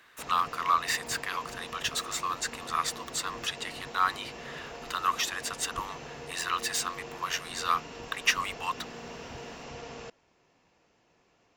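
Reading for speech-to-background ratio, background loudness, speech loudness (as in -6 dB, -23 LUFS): 12.0 dB, -43.0 LUFS, -31.0 LUFS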